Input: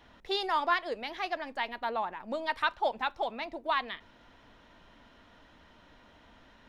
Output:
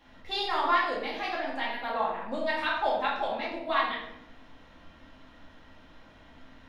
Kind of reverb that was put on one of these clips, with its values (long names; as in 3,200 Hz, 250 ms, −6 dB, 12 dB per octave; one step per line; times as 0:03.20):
rectangular room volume 230 cubic metres, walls mixed, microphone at 2.2 metres
level −4 dB